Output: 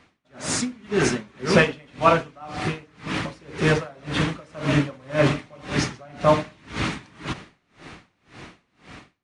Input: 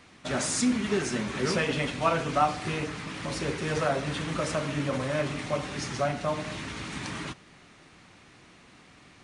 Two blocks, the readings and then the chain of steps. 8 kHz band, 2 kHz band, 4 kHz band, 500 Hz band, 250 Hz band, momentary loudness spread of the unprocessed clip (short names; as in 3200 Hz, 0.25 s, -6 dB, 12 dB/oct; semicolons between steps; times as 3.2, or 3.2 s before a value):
+1.5 dB, +6.0 dB, +4.0 dB, +6.0 dB, +4.5 dB, 10 LU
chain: high shelf 6300 Hz -10.5 dB; AGC gain up to 15 dB; dB-linear tremolo 1.9 Hz, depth 31 dB